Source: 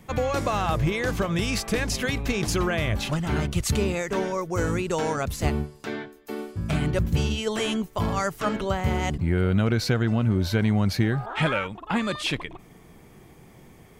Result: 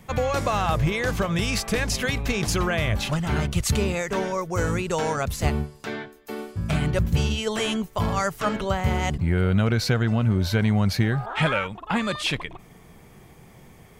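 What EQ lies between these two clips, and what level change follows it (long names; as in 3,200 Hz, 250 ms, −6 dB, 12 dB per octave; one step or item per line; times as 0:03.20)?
parametric band 310 Hz −5 dB 0.72 octaves
+2.0 dB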